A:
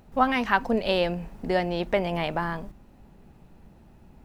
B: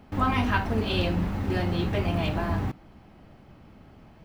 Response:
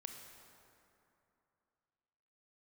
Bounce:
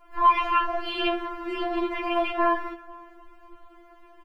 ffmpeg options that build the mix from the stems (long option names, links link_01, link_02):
-filter_complex "[0:a]equalizer=frequency=1000:width=6.3:gain=14.5,bandreject=frequency=3700:width=5.4,acrossover=split=320[link_01][link_02];[link_02]acompressor=threshold=-25dB:ratio=6[link_03];[link_01][link_03]amix=inputs=2:normalize=0,volume=-2dB[link_04];[1:a]firequalizer=gain_entry='entry(520,0);entry(1100,8);entry(7100,-17)':delay=0.05:min_phase=1,adelay=24,volume=-1dB,asplit=2[link_05][link_06];[link_06]volume=-6.5dB[link_07];[2:a]atrim=start_sample=2205[link_08];[link_07][link_08]afir=irnorm=-1:irlink=0[link_09];[link_04][link_05][link_09]amix=inputs=3:normalize=0,afftfilt=real='re*4*eq(mod(b,16),0)':imag='im*4*eq(mod(b,16),0)':win_size=2048:overlap=0.75"